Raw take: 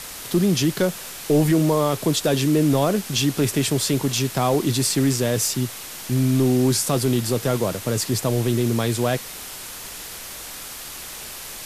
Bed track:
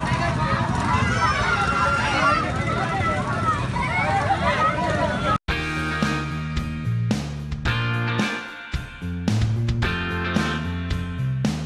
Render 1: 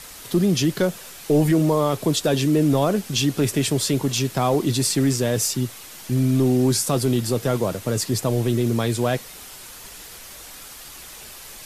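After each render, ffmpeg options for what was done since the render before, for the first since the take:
-af "afftdn=nr=6:nf=-36"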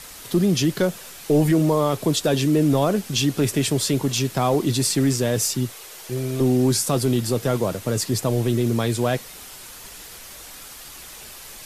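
-filter_complex "[0:a]asettb=1/sr,asplit=3[s0][s1][s2];[s0]atrim=end=5.724[s3];[s1]atrim=start=5.72:end=6.41,asetpts=PTS-STARTPTS,afade=t=in:d=0.004:c=qsin,afade=t=out:st=0.686:d=0.004:c=qsin,lowshelf=f=330:t=q:w=3:g=-6[s4];[s2]atrim=start=6.406[s5];[s3][s4]acrossfade=d=0.004:c1=hsin:c2=qsin[s6];[s6][s5]acrossfade=d=0.004:c1=qsin:c2=hsin"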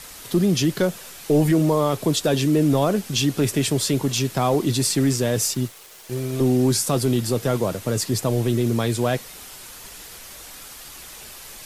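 -filter_complex "[0:a]asettb=1/sr,asplit=3[s0][s1][s2];[s0]atrim=end=5.544[s3];[s1]atrim=start=5.54:end=6.33,asetpts=PTS-STARTPTS,afade=t=in:d=0.004:c=qsin,afade=t=out:st=0.786:d=0.004:c=qsin,aeval=exprs='sgn(val(0))*max(abs(val(0))-0.00596,0)':c=same[s4];[s2]atrim=start=6.326[s5];[s3][s4]acrossfade=d=0.004:c1=hsin:c2=qsin[s6];[s6][s5]acrossfade=d=0.004:c1=qsin:c2=hsin"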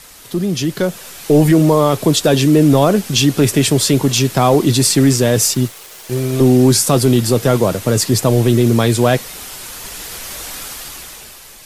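-af "dynaudnorm=f=170:g=11:m=4.22"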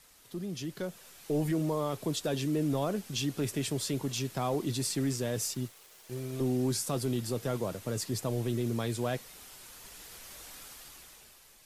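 -af "volume=0.106"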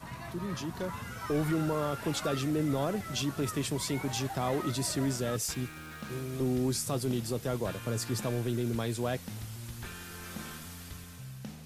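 -filter_complex "[1:a]volume=0.0944[s0];[0:a][s0]amix=inputs=2:normalize=0"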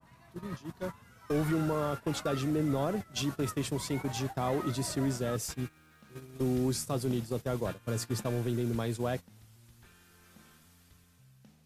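-af "agate=range=0.158:threshold=0.02:ratio=16:detection=peak,adynamicequalizer=threshold=0.00398:dfrequency=1800:dqfactor=0.7:tfrequency=1800:tqfactor=0.7:attack=5:release=100:ratio=0.375:range=2:mode=cutabove:tftype=highshelf"

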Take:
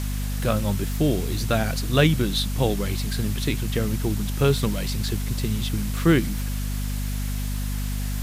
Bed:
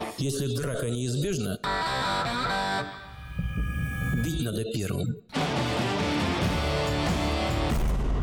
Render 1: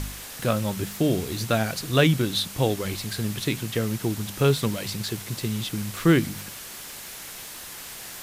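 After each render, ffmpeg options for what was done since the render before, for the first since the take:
-af "bandreject=f=50:t=h:w=4,bandreject=f=100:t=h:w=4,bandreject=f=150:t=h:w=4,bandreject=f=200:t=h:w=4,bandreject=f=250:t=h:w=4"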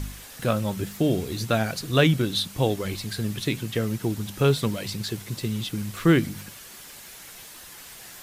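-af "afftdn=nr=6:nf=-40"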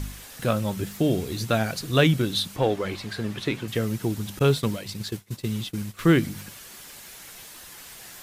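-filter_complex "[0:a]asettb=1/sr,asplit=3[s0][s1][s2];[s0]atrim=end=2.564[s3];[s1]atrim=start=2.56:end=3.68,asetpts=PTS-STARTPTS,afade=t=in:d=0.004:c=qsin,afade=t=out:st=1.116:d=0.004:c=qsin,asplit=2[s4][s5];[s5]highpass=f=720:p=1,volume=4.47,asoftclip=type=tanh:threshold=0.398[s6];[s4][s6]amix=inputs=2:normalize=0,lowpass=f=1200:p=1,volume=0.501[s7];[s2]atrim=start=3.676[s8];[s3][s7]acrossfade=d=0.004:c1=hsin:c2=qsin[s9];[s9][s8]acrossfade=d=0.004:c1=qsin:c2=hsin,asettb=1/sr,asplit=3[s10][s11][s12];[s10]atrim=end=4.394[s13];[s11]atrim=start=4.39:end=5.99,asetpts=PTS-STARTPTS,afade=t=in:d=0.004:c=qsin,afade=t=out:st=1.596:d=0.004:c=qsin,agate=range=0.0224:threshold=0.0355:ratio=3:release=100:detection=peak[s14];[s12]atrim=start=5.986[s15];[s13][s14]acrossfade=d=0.004:c1=hsin:c2=qsin[s16];[s16][s15]acrossfade=d=0.004:c1=qsin:c2=hsin"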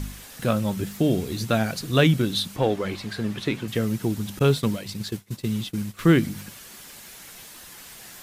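-af "equalizer=f=210:t=o:w=0.77:g=3.5"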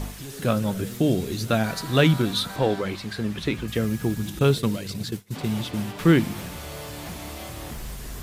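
-filter_complex "[1:a]volume=0.299[s0];[0:a][s0]amix=inputs=2:normalize=0"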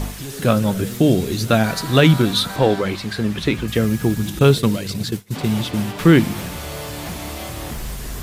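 -af "volume=2.11,alimiter=limit=0.794:level=0:latency=1"

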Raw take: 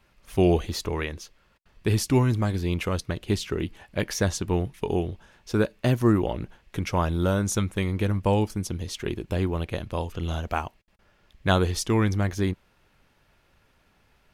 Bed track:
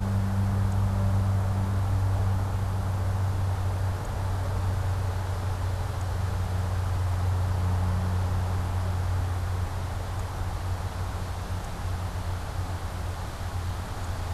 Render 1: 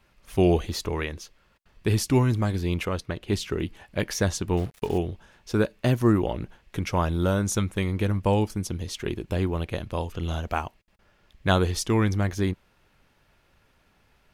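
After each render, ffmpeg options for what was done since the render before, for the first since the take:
-filter_complex "[0:a]asettb=1/sr,asplit=3[s0][s1][s2];[s0]atrim=end=2.854[s3];[s1]atrim=start=2.85:end=3.33,asetpts=PTS-STARTPTS,afade=t=in:d=0.004:c=qsin,afade=t=out:st=0.476:d=0.004:c=qsin,bass=f=250:g=-3,treble=f=4000:g=-6[s4];[s2]atrim=start=3.326[s5];[s3][s4]acrossfade=d=0.004:c1=hsin:c2=qsin[s6];[s6][s5]acrossfade=d=0.004:c1=qsin:c2=hsin,asettb=1/sr,asplit=3[s7][s8][s9];[s7]atrim=end=4.574[s10];[s8]atrim=start=4.57:end=4.98,asetpts=PTS-STARTPTS,afade=t=in:d=0.004:c=qsin,afade=t=out:st=0.406:d=0.004:c=qsin,acrusher=bits=6:mix=0:aa=0.5[s11];[s9]atrim=start=4.976[s12];[s10][s11]acrossfade=d=0.004:c1=hsin:c2=qsin[s13];[s13][s12]acrossfade=d=0.004:c1=qsin:c2=hsin"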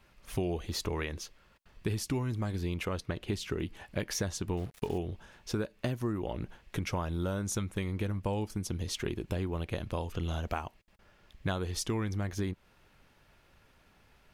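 -af "acompressor=threshold=0.0316:ratio=6"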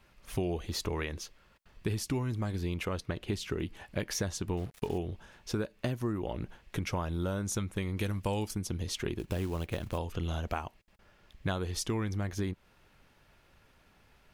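-filter_complex "[0:a]asettb=1/sr,asplit=3[s0][s1][s2];[s0]atrim=end=7.974[s3];[s1]atrim=start=7.97:end=8.55,asetpts=PTS-STARTPTS,afade=t=in:d=0.004:c=qsin,afade=t=out:st=0.576:d=0.004:c=qsin,highshelf=f=2500:g=10[s4];[s2]atrim=start=8.546[s5];[s3][s4]acrossfade=d=0.004:c1=hsin:c2=qsin[s6];[s6][s5]acrossfade=d=0.004:c1=qsin:c2=hsin,asplit=3[s7][s8][s9];[s7]afade=t=out:st=9.18:d=0.02[s10];[s8]acrusher=bits=5:mode=log:mix=0:aa=0.000001,afade=t=in:st=9.18:d=0.02,afade=t=out:st=9.97:d=0.02[s11];[s9]afade=t=in:st=9.97:d=0.02[s12];[s10][s11][s12]amix=inputs=3:normalize=0"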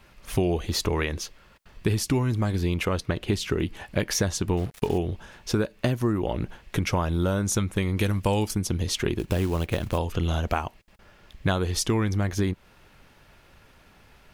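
-af "volume=2.66"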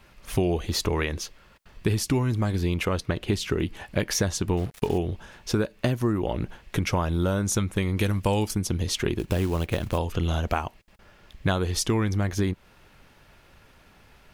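-af anull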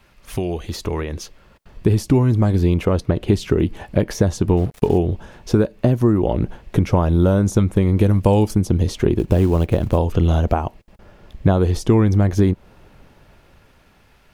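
-filter_complex "[0:a]acrossover=split=890[s0][s1];[s0]dynaudnorm=f=220:g=13:m=3.76[s2];[s1]alimiter=limit=0.075:level=0:latency=1:release=104[s3];[s2][s3]amix=inputs=2:normalize=0"

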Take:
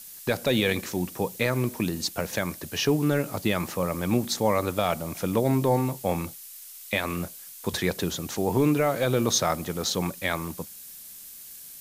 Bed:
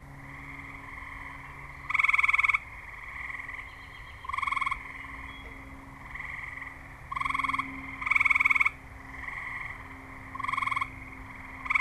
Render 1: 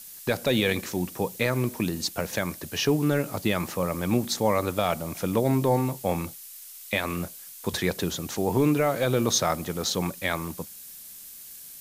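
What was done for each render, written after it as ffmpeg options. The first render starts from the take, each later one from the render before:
-af anull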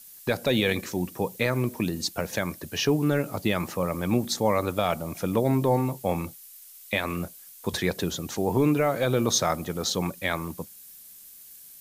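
-af "afftdn=nr=6:nf=-44"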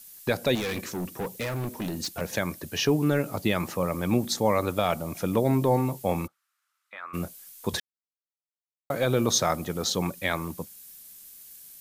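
-filter_complex "[0:a]asettb=1/sr,asplit=3[s0][s1][s2];[s0]atrim=end=0.554[s3];[s1]atrim=start=0.55:end=2.21,asetpts=PTS-STARTPTS,afade=t=in:d=0.004:c=qsin,afade=t=out:st=1.656:d=0.004:c=qsin,asoftclip=type=hard:threshold=0.0422[s4];[s2]atrim=start=2.206[s5];[s3][s4]acrossfade=d=0.004:c1=hsin:c2=qsin[s6];[s6][s5]acrossfade=d=0.004:c1=qsin:c2=hsin,asplit=3[s7][s8][s9];[s7]afade=t=out:st=6.26:d=0.02[s10];[s8]bandpass=f=1300:t=q:w=5.5,afade=t=in:st=6.26:d=0.02,afade=t=out:st=7.13:d=0.02[s11];[s9]afade=t=in:st=7.13:d=0.02[s12];[s10][s11][s12]amix=inputs=3:normalize=0,asplit=3[s13][s14][s15];[s13]atrim=end=7.8,asetpts=PTS-STARTPTS,afade=t=out:st=7.796:d=0.004:c=hsin[s16];[s14]atrim=start=7.8:end=8.9,asetpts=PTS-STARTPTS,volume=0[s17];[s15]atrim=start=8.9,asetpts=PTS-STARTPTS,afade=t=in:d=0.004:c=hsin[s18];[s16][s17][s18]concat=n=3:v=0:a=1"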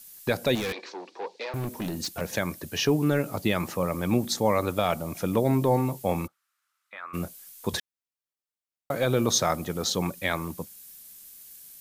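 -filter_complex "[0:a]asettb=1/sr,asplit=3[s0][s1][s2];[s0]atrim=end=0.724[s3];[s1]atrim=start=0.72:end=1.54,asetpts=PTS-STARTPTS,afade=t=in:d=0.004:c=qsin,afade=t=out:st=0.816:d=0.004:c=qsin,highpass=f=390:w=0.5412,highpass=f=390:w=1.3066,equalizer=f=600:t=q:w=4:g=-4,equalizer=f=890:t=q:w=4:g=4,equalizer=f=1300:t=q:w=4:g=-7,equalizer=f=1900:t=q:w=4:g=-4,equalizer=f=3000:t=q:w=4:g=-4,equalizer=f=4400:t=q:w=4:g=4,lowpass=f=4700:w=0.5412,lowpass=f=4700:w=1.3066[s4];[s2]atrim=start=1.536[s5];[s3][s4]acrossfade=d=0.004:c1=hsin:c2=qsin[s6];[s6][s5]acrossfade=d=0.004:c1=qsin:c2=hsin"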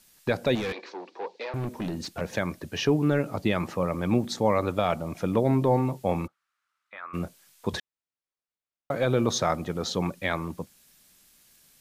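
-af "aemphasis=mode=reproduction:type=50fm"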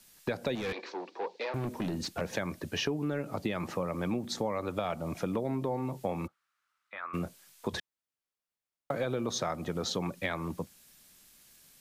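-filter_complex "[0:a]acrossover=split=130|1600[s0][s1][s2];[s0]alimiter=level_in=5.31:limit=0.0631:level=0:latency=1,volume=0.188[s3];[s3][s1][s2]amix=inputs=3:normalize=0,acompressor=threshold=0.0355:ratio=6"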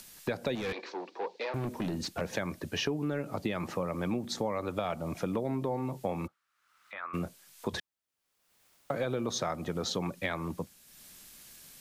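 -af "acompressor=mode=upward:threshold=0.00631:ratio=2.5"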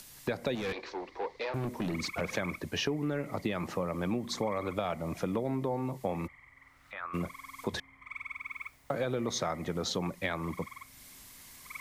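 -filter_complex "[1:a]volume=0.119[s0];[0:a][s0]amix=inputs=2:normalize=0"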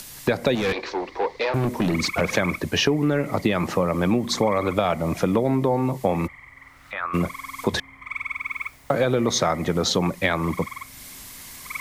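-af "volume=3.76"

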